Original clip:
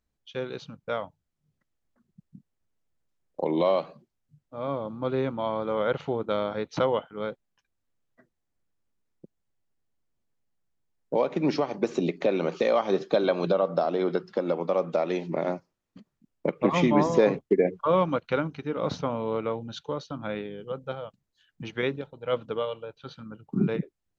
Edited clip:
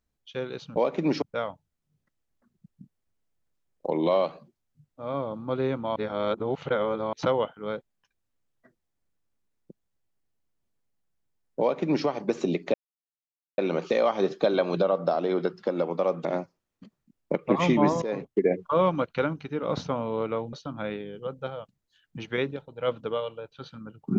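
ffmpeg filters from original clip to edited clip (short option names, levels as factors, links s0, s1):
-filter_complex "[0:a]asplit=9[s0][s1][s2][s3][s4][s5][s6][s7][s8];[s0]atrim=end=0.762[s9];[s1]atrim=start=11.138:end=11.602[s10];[s2]atrim=start=0.758:end=5.502[s11];[s3]atrim=start=5.498:end=6.672,asetpts=PTS-STARTPTS,areverse[s12];[s4]atrim=start=6.668:end=12.28,asetpts=PTS-STARTPTS,afade=t=out:st=5.608:d=0.004:c=hsin,apad=pad_dur=0.84[s13];[s5]atrim=start=12.28:end=14.952,asetpts=PTS-STARTPTS,afade=t=in:d=0.004:c=hsin[s14];[s6]atrim=start=15.388:end=17.16,asetpts=PTS-STARTPTS,afade=t=out:st=1.768:d=0.004:c=hsin:silence=0.158489[s15];[s7]atrim=start=17.16:end=19.672,asetpts=PTS-STARTPTS,afade=t=in:d=0.64:c=qsin:silence=0.158489[s16];[s8]atrim=start=19.978[s17];[s9][s10]acrossfade=d=0.004:c1=hsin:c2=hsin[s18];[s18][s11]acrossfade=d=0.004:c1=hsin:c2=hsin[s19];[s19][s12]acrossfade=d=0.004:c1=hsin:c2=hsin[s20];[s13][s14]concat=n=2:v=0:a=1[s21];[s20][s21]acrossfade=d=0.004:c1=hsin:c2=hsin[s22];[s15][s16]concat=n=2:v=0:a=1[s23];[s22][s23]acrossfade=d=0.004:c1=hsin:c2=hsin[s24];[s24][s17]acrossfade=d=0.004:c1=hsin:c2=hsin"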